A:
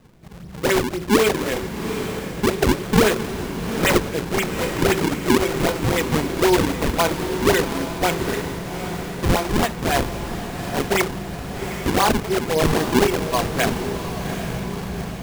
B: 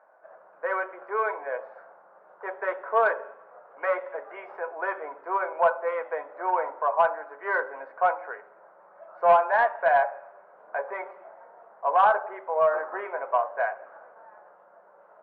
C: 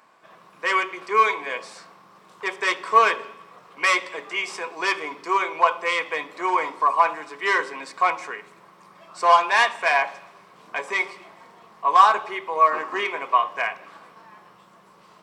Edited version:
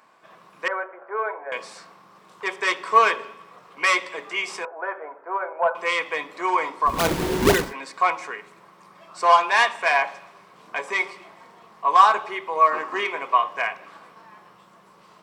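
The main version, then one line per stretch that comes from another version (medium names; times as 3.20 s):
C
0.68–1.52 s: from B
4.65–5.75 s: from B
6.96–7.63 s: from A, crossfade 0.24 s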